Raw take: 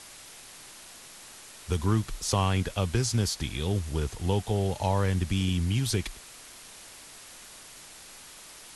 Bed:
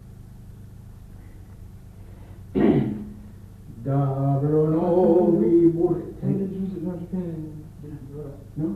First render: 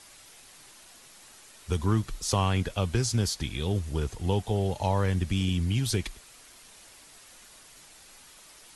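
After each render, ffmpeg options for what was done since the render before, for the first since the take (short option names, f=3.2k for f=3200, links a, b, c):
-af "afftdn=nr=6:nf=-48"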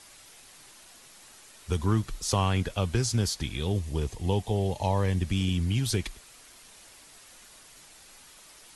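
-filter_complex "[0:a]asettb=1/sr,asplit=3[a][b][c];[a]atrim=end=3.704[d];[b]atrim=start=3.7:end=5.23,asetpts=PTS-STARTPTS,afade=t=in:d=0.004:c=qsin,afade=t=out:st=1.526:d=0.004:c=qsin,equalizer=f=1.4k:w=5.6:g=-10[e];[c]atrim=start=5.226[f];[d][e]acrossfade=d=0.004:c1=hsin:c2=qsin[g];[g][f]acrossfade=d=0.004:c1=qsin:c2=hsin"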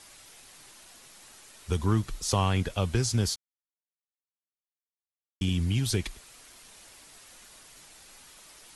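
-filter_complex "[0:a]asplit=3[a][b][c];[a]atrim=end=3.36,asetpts=PTS-STARTPTS,afade=t=out:st=3.356:d=0.004:c=hsin[d];[b]atrim=start=3.36:end=5.41,asetpts=PTS-STARTPTS,volume=0[e];[c]atrim=start=5.41,asetpts=PTS-STARTPTS,afade=t=in:d=0.004:c=hsin[f];[d][e][f]concat=n=3:v=0:a=1"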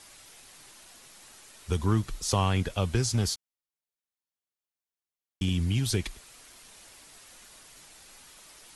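-filter_complex "[0:a]asettb=1/sr,asplit=3[a][b][c];[a]atrim=end=3.074[d];[b]atrim=start=3.07:end=5.89,asetpts=PTS-STARTPTS,afade=t=in:d=0.004:c=qsin,afade=t=out:st=2.816:d=0.004:c=qsin,asoftclip=type=hard:threshold=-19dB[e];[c]atrim=start=5.886[f];[d][e]acrossfade=d=0.004:c1=hsin:c2=qsin[g];[g][f]acrossfade=d=0.004:c1=qsin:c2=hsin"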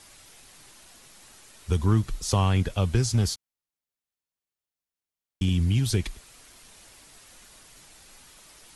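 -af "lowshelf=f=220:g=5.5"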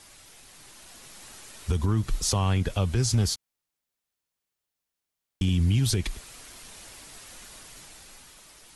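-af "alimiter=limit=-21dB:level=0:latency=1:release=177,dynaudnorm=f=140:g=13:m=5.5dB"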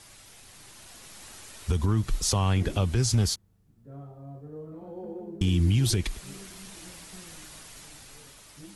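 -filter_complex "[1:a]volume=-21.5dB[a];[0:a][a]amix=inputs=2:normalize=0"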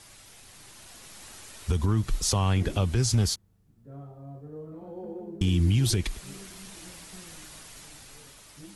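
-af anull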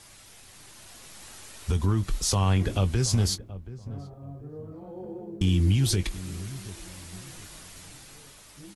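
-filter_complex "[0:a]asplit=2[a][b];[b]adelay=21,volume=-12.5dB[c];[a][c]amix=inputs=2:normalize=0,asplit=2[d][e];[e]adelay=728,lowpass=f=800:p=1,volume=-15dB,asplit=2[f][g];[g]adelay=728,lowpass=f=800:p=1,volume=0.33,asplit=2[h][i];[i]adelay=728,lowpass=f=800:p=1,volume=0.33[j];[d][f][h][j]amix=inputs=4:normalize=0"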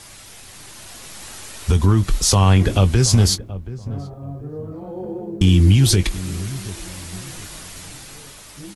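-af "volume=9.5dB"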